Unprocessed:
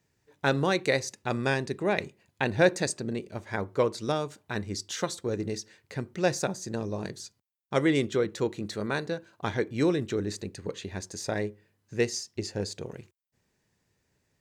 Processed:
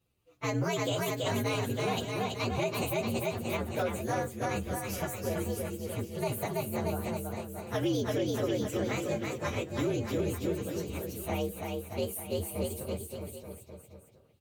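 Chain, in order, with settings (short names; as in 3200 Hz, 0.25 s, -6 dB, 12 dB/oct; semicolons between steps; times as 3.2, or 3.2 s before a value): inharmonic rescaling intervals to 121%; bouncing-ball echo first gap 0.33 s, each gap 0.9×, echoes 5; limiter -21.5 dBFS, peak gain reduction 10 dB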